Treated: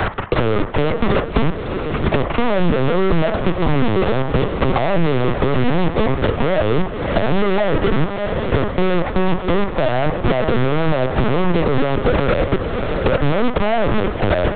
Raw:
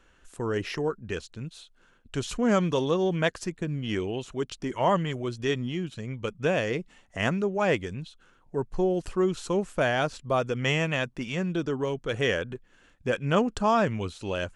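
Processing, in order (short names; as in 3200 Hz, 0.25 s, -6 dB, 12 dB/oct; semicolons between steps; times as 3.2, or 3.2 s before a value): per-bin compression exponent 0.6; reverb removal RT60 0.94 s; elliptic band-pass 150–800 Hz, stop band 80 dB; in parallel at -0.5 dB: compressor 8:1, threshold -39 dBFS, peak gain reduction 21 dB; on the sum: crossover distortion -39.5 dBFS; step gate "xxx.xxx.xxx" 62 bpm -12 dB; fuzz box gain 47 dB, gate -45 dBFS; diffused feedback echo 0.619 s, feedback 48%, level -15.5 dB; on a send at -7 dB: reverb RT60 0.40 s, pre-delay 3 ms; on the sum: LPC vocoder at 8 kHz pitch kept; maximiser +10.5 dB; three-band squash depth 70%; gain -5 dB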